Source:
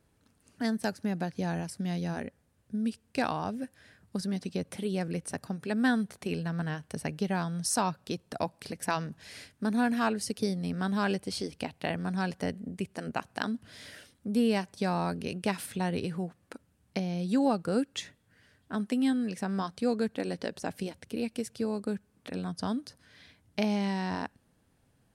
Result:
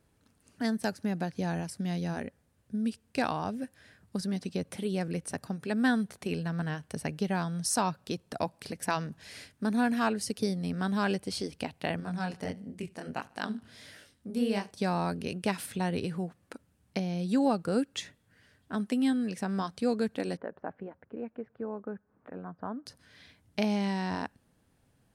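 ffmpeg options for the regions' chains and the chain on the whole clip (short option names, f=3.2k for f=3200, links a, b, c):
-filter_complex "[0:a]asettb=1/sr,asplit=3[a][b][c];[a]atrim=end=12.004[d];[b]atrim=start=12:end=14.71,asetpts=PTS-STARTPTS,afade=t=in:d=0.004:c=qsin,afade=t=out:st=2.706:d=0.004:c=qsin,flanger=delay=19:depth=7.9:speed=1.5,aecho=1:1:73|146|219:0.0708|0.0326|0.015,atrim=end_sample=119511[e];[c]atrim=start=14.706[f];[d][e]acrossfade=d=0.004:c1=hsin:c2=qsin[g];[g][f]acrossfade=d=0.004:c1=qsin:c2=hsin,asettb=1/sr,asplit=3[h][i][j];[h]atrim=end=20.374[k];[i]atrim=start=20.37:end=22.86,asetpts=PTS-STARTPTS,afade=t=in:d=0.004:c=qsin,afade=t=out:st=2.486:d=0.004:c=qsin,lowpass=f=1.5k:w=0.5412,lowpass=f=1.5k:w=1.3066,lowshelf=f=310:g=-11.5,acompressor=mode=upward:threshold=-59dB:ratio=2.5:attack=3.2:release=140:knee=2.83:detection=peak[l];[j]atrim=start=22.856[m];[k][l]acrossfade=d=0.004:c1=hsin:c2=qsin[n];[n][m]acrossfade=d=0.004:c1=qsin:c2=hsin"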